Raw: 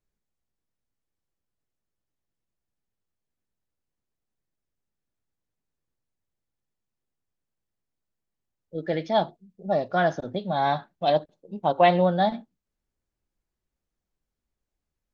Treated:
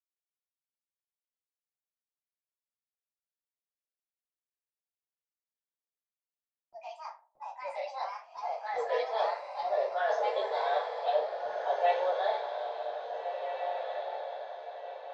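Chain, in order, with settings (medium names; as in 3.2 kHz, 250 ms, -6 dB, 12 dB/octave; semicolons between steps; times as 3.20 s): steep high-pass 430 Hz 96 dB/octave; gate with hold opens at -42 dBFS; low-pass 1.1 kHz 6 dB/octave; peaking EQ 570 Hz -12.5 dB 3 oct; reverse; compression, threshold -43 dBFS, peak gain reduction 16 dB; reverse; reverberation RT60 0.50 s, pre-delay 3 ms, DRR -6.5 dB; ever faster or slower copies 273 ms, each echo +3 st, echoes 2, each echo -6 dB; on a send: echo that smears into a reverb 1736 ms, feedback 42%, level -5 dB; on the sum: trim +6.5 dB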